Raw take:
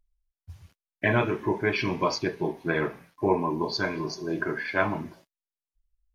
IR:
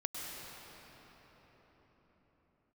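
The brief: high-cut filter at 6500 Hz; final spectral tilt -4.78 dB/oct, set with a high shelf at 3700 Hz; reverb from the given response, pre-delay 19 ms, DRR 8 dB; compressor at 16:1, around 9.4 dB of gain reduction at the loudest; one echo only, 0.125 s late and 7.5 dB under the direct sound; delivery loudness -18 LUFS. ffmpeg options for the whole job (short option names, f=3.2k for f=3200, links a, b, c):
-filter_complex "[0:a]lowpass=6.5k,highshelf=f=3.7k:g=-7.5,acompressor=threshold=-28dB:ratio=16,aecho=1:1:125:0.422,asplit=2[a][b];[1:a]atrim=start_sample=2205,adelay=19[c];[b][c]afir=irnorm=-1:irlink=0,volume=-10dB[d];[a][d]amix=inputs=2:normalize=0,volume=15dB"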